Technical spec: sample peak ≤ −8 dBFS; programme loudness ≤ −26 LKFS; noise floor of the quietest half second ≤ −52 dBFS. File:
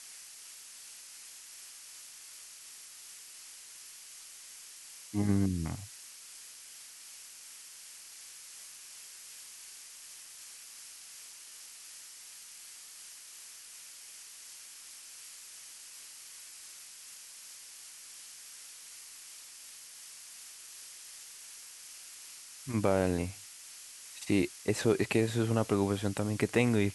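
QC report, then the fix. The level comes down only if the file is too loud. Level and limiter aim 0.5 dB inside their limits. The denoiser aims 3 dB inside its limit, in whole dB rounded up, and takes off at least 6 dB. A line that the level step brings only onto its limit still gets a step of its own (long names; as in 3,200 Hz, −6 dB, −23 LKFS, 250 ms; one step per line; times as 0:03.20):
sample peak −12.0 dBFS: in spec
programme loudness −38.0 LKFS: in spec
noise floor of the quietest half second −51 dBFS: out of spec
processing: broadband denoise 6 dB, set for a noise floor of −51 dBFS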